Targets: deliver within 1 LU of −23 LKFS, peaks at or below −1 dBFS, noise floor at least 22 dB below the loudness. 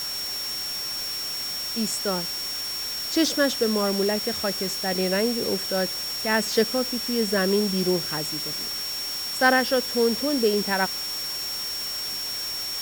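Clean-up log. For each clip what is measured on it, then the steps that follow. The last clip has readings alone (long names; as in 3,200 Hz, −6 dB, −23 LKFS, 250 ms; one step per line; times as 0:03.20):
interfering tone 5,500 Hz; level of the tone −29 dBFS; background noise floor −31 dBFS; target noise floor −47 dBFS; integrated loudness −24.5 LKFS; sample peak −7.0 dBFS; target loudness −23.0 LKFS
→ notch filter 5,500 Hz, Q 30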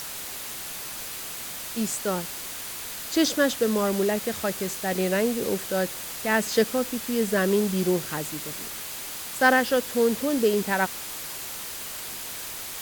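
interfering tone none found; background noise floor −36 dBFS; target noise floor −48 dBFS
→ broadband denoise 12 dB, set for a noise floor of −36 dBFS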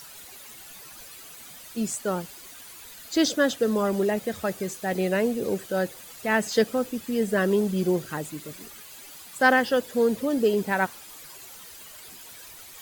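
background noise floor −45 dBFS; target noise floor −48 dBFS
→ broadband denoise 6 dB, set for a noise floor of −45 dBFS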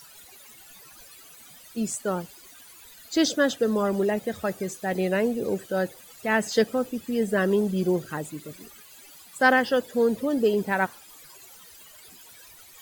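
background noise floor −50 dBFS; integrated loudness −25.5 LKFS; sample peak −7.5 dBFS; target loudness −23.0 LKFS
→ level +2.5 dB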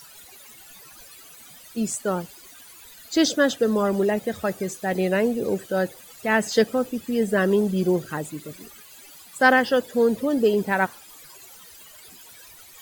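integrated loudness −23.0 LKFS; sample peak −5.0 dBFS; background noise floor −47 dBFS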